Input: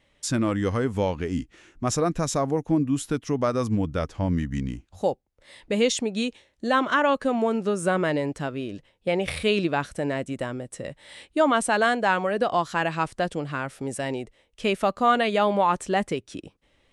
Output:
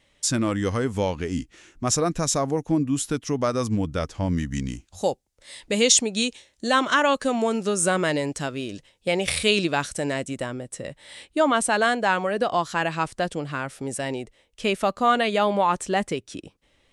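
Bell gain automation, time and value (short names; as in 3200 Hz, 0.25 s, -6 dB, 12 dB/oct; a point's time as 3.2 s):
bell 7400 Hz 2.1 oct
4.17 s +7 dB
4.7 s +13.5 dB
10.12 s +13.5 dB
10.53 s +4.5 dB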